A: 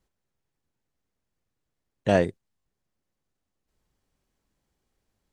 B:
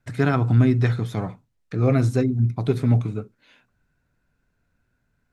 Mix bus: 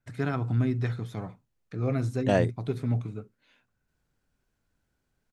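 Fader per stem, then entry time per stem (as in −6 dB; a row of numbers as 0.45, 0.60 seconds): −3.0, −9.0 decibels; 0.20, 0.00 seconds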